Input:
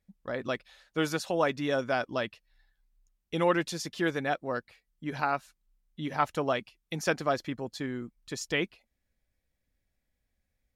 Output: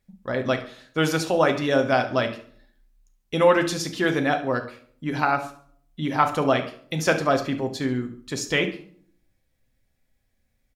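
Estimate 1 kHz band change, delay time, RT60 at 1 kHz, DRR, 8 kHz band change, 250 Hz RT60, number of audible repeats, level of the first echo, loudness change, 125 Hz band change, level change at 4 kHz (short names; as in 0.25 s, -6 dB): +7.5 dB, 70 ms, 0.50 s, 5.5 dB, +7.5 dB, 0.75 s, 2, -14.5 dB, +8.0 dB, +9.0 dB, +7.5 dB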